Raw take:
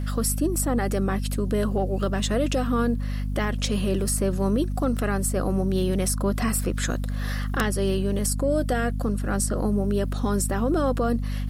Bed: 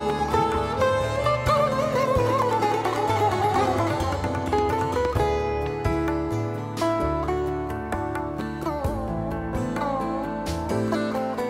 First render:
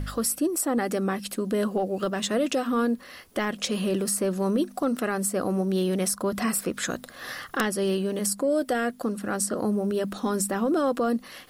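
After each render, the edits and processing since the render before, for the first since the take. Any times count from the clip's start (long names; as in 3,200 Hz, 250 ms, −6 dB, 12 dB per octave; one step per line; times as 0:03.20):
hum removal 50 Hz, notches 5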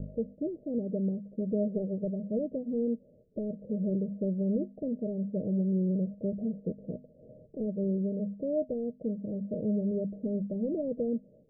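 spectral envelope flattened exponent 0.6
Chebyshev low-pass with heavy ripple 640 Hz, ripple 9 dB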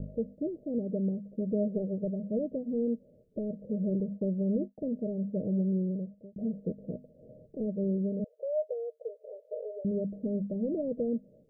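0:04.00–0:04.78: downward expander −38 dBFS
0:05.68–0:06.36: fade out
0:08.24–0:09.85: linear-phase brick-wall high-pass 410 Hz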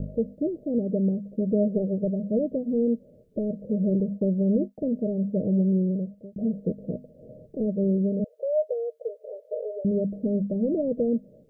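level +6.5 dB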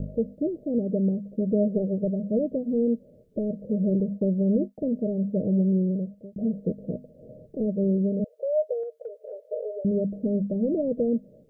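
0:08.83–0:09.32: downward compressor 3 to 1, threshold −33 dBFS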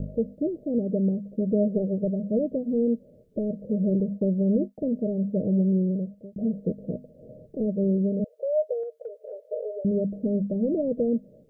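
no processing that can be heard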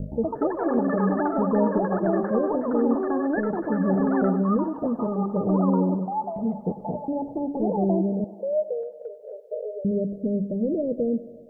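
delay with pitch and tempo change per echo 118 ms, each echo +6 semitones, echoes 3
feedback echo with a high-pass in the loop 97 ms, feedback 76%, high-pass 180 Hz, level −16 dB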